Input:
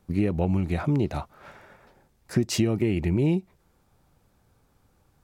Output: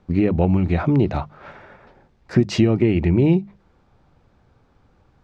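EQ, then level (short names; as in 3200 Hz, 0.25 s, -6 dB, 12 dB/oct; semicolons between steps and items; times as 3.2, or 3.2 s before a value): air absorption 170 m; notches 50/100/150/200 Hz; +7.5 dB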